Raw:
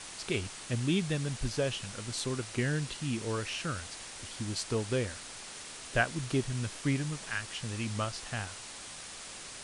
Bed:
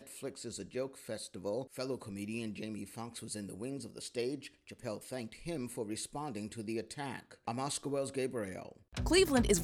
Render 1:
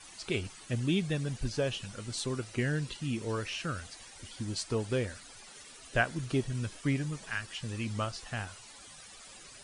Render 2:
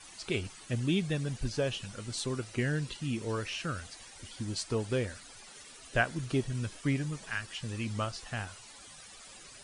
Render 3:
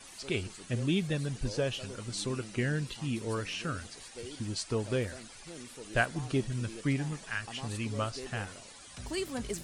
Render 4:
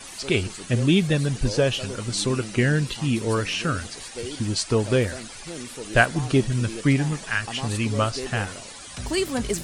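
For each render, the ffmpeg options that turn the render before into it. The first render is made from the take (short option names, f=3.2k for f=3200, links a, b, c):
-af "afftdn=nr=13:nf=-46"
-af anull
-filter_complex "[1:a]volume=-8dB[a];[0:a][a]amix=inputs=2:normalize=0"
-af "volume=10.5dB"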